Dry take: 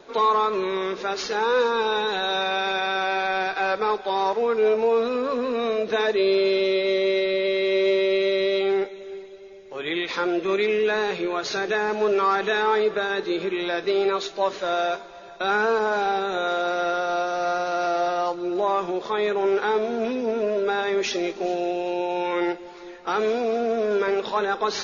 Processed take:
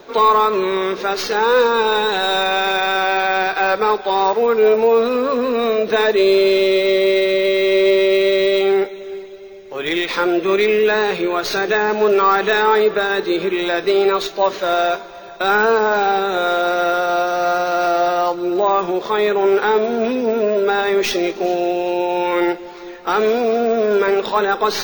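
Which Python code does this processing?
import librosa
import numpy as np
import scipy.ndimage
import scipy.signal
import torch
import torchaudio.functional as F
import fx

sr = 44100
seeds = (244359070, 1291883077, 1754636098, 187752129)

y = fx.tracing_dist(x, sr, depth_ms=0.026)
y = np.repeat(scipy.signal.resample_poly(y, 1, 2), 2)[:len(y)]
y = y * librosa.db_to_amplitude(7.0)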